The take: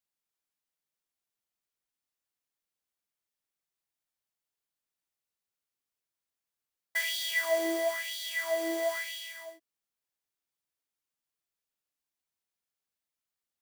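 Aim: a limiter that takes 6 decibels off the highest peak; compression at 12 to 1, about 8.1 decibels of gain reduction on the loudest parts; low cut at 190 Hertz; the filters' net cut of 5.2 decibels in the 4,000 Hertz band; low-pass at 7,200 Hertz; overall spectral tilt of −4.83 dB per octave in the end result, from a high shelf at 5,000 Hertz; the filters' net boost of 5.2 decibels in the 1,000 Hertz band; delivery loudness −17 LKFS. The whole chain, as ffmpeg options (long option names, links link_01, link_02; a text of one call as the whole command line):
ffmpeg -i in.wav -af "highpass=190,lowpass=7200,equalizer=frequency=1000:width_type=o:gain=8.5,equalizer=frequency=4000:width_type=o:gain=-5,highshelf=frequency=5000:gain=-5,acompressor=threshold=-29dB:ratio=12,volume=19dB,alimiter=limit=-8.5dB:level=0:latency=1" out.wav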